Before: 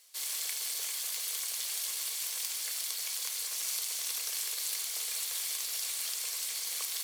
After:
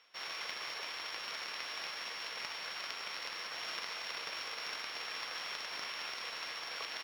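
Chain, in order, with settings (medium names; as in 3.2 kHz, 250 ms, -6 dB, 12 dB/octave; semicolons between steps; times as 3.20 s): sorted samples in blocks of 8 samples; reverse; upward compressor, threshold -40 dBFS; reverse; distance through air 210 m; doubling 44 ms -12 dB; trim +4.5 dB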